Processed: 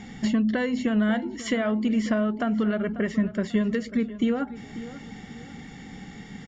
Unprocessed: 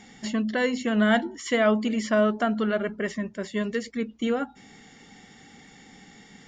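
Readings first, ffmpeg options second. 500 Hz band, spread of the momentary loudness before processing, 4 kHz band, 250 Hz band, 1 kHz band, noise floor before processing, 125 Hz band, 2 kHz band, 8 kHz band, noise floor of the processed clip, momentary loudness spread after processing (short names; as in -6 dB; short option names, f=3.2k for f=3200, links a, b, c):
-3.5 dB, 9 LU, -3.5 dB, +2.5 dB, -4.5 dB, -52 dBFS, +3.5 dB, -4.0 dB, n/a, -43 dBFS, 17 LU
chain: -filter_complex "[0:a]acompressor=threshold=-30dB:ratio=6,bass=f=250:g=9,treble=f=4k:g=-6,asplit=2[a][b];[b]adelay=542,lowpass=f=3.3k:p=1,volume=-15dB,asplit=2[c][d];[d]adelay=542,lowpass=f=3.3k:p=1,volume=0.35,asplit=2[e][f];[f]adelay=542,lowpass=f=3.3k:p=1,volume=0.35[g];[c][e][g]amix=inputs=3:normalize=0[h];[a][h]amix=inputs=2:normalize=0,volume=5dB"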